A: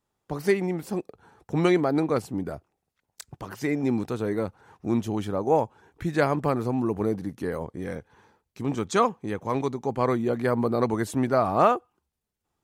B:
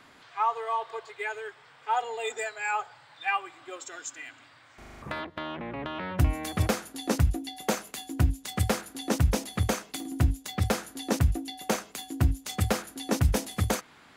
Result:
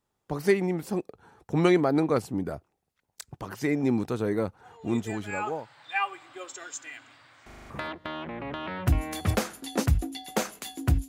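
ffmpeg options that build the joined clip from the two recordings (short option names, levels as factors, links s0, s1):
-filter_complex "[0:a]apad=whole_dur=11.08,atrim=end=11.08,atrim=end=5.84,asetpts=PTS-STARTPTS[s0];[1:a]atrim=start=1.92:end=8.4,asetpts=PTS-STARTPTS[s1];[s0][s1]acrossfade=d=1.24:c1=tri:c2=tri"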